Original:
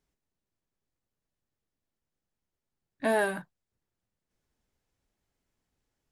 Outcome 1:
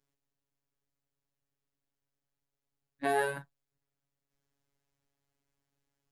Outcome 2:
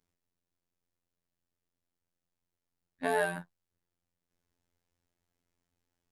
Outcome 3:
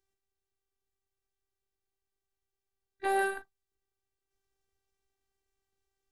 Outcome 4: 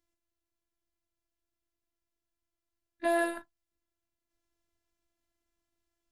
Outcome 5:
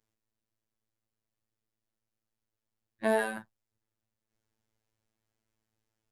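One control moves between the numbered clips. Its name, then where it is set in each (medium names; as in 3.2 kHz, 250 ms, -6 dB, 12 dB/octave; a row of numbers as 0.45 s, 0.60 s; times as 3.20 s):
robot voice, frequency: 140 Hz, 87 Hz, 390 Hz, 340 Hz, 110 Hz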